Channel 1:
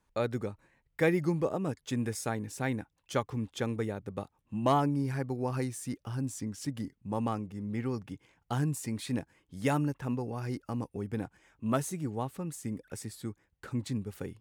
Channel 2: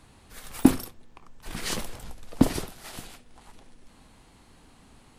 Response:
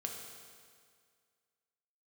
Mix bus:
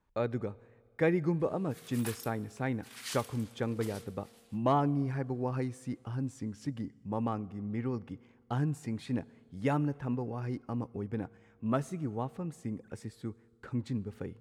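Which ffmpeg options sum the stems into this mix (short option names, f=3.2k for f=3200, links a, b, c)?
-filter_complex "[0:a]aemphasis=mode=reproduction:type=75kf,volume=-1.5dB,asplit=2[a][b];[b]volume=-17.5dB[c];[1:a]highpass=1.4k,adelay=1400,volume=-10dB,afade=t=out:st=3.5:d=0.69:silence=0.251189,asplit=2[d][e];[e]volume=-8.5dB[f];[2:a]atrim=start_sample=2205[g];[c][f]amix=inputs=2:normalize=0[h];[h][g]afir=irnorm=-1:irlink=0[i];[a][d][i]amix=inputs=3:normalize=0"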